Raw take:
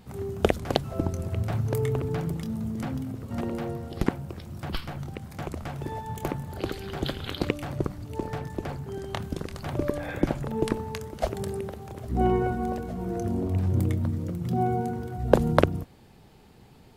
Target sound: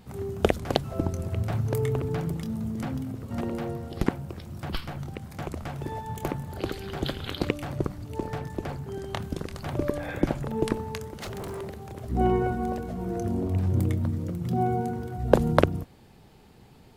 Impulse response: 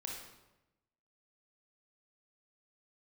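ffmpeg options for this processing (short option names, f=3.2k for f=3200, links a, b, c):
-filter_complex "[0:a]asettb=1/sr,asplit=3[a][b][c];[a]atrim=end=11.134[d];[b]atrim=start=11.13:end=11.93,asetpts=PTS-STARTPTS,afade=t=in:d=0.004:c=qsin,afade=t=out:st=0.796:d=0.004:c=qsin,aeval=exprs='0.0299*(abs(mod(val(0)/0.0299+3,4)-2)-1)':c=same[e];[c]atrim=start=11.926[f];[d][e]acrossfade=d=0.004:c1=hsin:c2=qsin[g];[g][f]acrossfade=d=0.004:c1=qsin:c2=hsin"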